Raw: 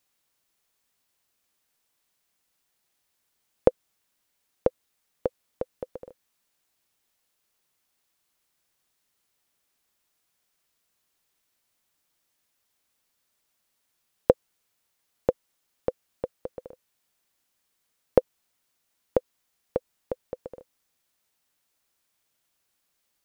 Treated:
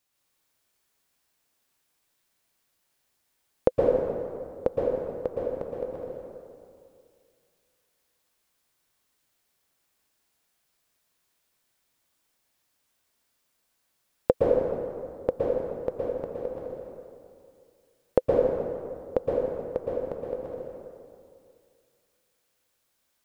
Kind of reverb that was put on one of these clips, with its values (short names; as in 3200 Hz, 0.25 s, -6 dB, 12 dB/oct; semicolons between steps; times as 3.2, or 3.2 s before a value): plate-style reverb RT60 2.3 s, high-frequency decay 0.6×, pre-delay 0.105 s, DRR -4 dB; gain -3 dB